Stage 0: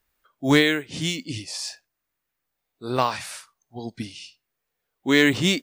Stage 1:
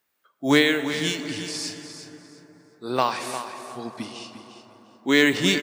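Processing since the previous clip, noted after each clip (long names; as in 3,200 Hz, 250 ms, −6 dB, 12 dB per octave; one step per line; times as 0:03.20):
high-pass filter 180 Hz 12 dB per octave
repeating echo 352 ms, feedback 24%, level −11 dB
on a send at −10.5 dB: convolution reverb RT60 4.7 s, pre-delay 78 ms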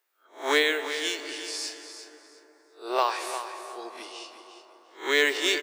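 peak hold with a rise ahead of every peak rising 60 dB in 0.32 s
elliptic high-pass filter 360 Hz, stop band 60 dB
level −2.5 dB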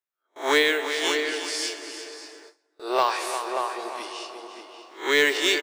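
slap from a distant wall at 100 metres, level −6 dB
in parallel at −4.5 dB: soft clipping −21.5 dBFS, distortion −10 dB
on the sum: noise gate with hold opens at −37 dBFS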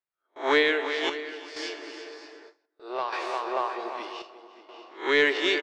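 square-wave tremolo 0.64 Hz, depth 60%, duty 70%
high-frequency loss of the air 190 metres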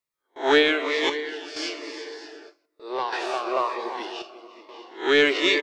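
phaser whose notches keep moving one way falling 1.1 Hz
level +6 dB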